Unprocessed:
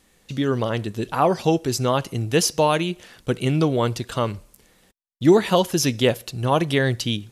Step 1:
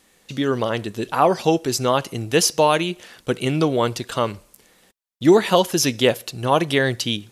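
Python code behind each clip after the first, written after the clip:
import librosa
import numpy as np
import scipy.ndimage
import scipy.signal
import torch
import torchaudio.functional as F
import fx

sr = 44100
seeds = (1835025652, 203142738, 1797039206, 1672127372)

y = fx.low_shelf(x, sr, hz=150.0, db=-11.0)
y = F.gain(torch.from_numpy(y), 3.0).numpy()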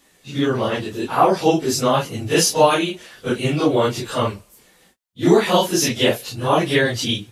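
y = fx.phase_scramble(x, sr, seeds[0], window_ms=100)
y = F.gain(torch.from_numpy(y), 1.5).numpy()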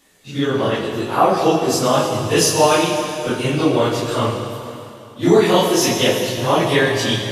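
y = fx.rev_plate(x, sr, seeds[1], rt60_s=2.8, hf_ratio=0.95, predelay_ms=0, drr_db=2.5)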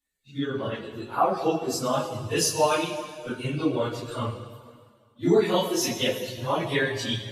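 y = fx.bin_expand(x, sr, power=1.5)
y = F.gain(torch.from_numpy(y), -6.0).numpy()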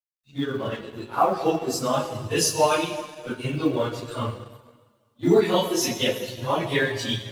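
y = fx.law_mismatch(x, sr, coded='A')
y = F.gain(torch.from_numpy(y), 2.5).numpy()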